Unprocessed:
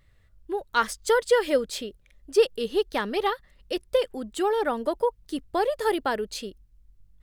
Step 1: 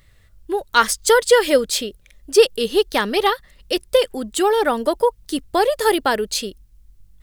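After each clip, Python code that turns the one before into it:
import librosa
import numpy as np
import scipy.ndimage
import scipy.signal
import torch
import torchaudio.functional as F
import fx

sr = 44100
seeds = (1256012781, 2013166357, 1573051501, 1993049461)

y = fx.high_shelf(x, sr, hz=3300.0, db=8.0)
y = F.gain(torch.from_numpy(y), 7.0).numpy()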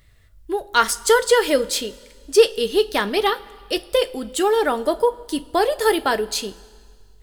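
y = fx.rev_double_slope(x, sr, seeds[0], early_s=0.23, late_s=1.9, knee_db=-18, drr_db=9.0)
y = F.gain(torch.from_numpy(y), -2.0).numpy()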